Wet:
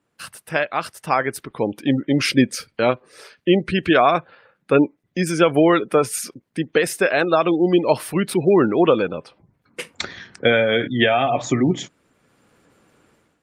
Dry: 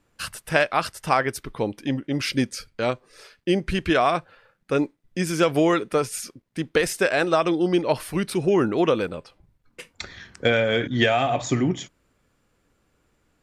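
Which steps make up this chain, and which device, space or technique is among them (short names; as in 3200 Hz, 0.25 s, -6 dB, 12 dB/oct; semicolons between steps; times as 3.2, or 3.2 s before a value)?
noise-suppressed video call (HPF 130 Hz 12 dB/oct; spectral gate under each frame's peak -30 dB strong; AGC gain up to 15 dB; gain -2 dB; Opus 32 kbps 48000 Hz)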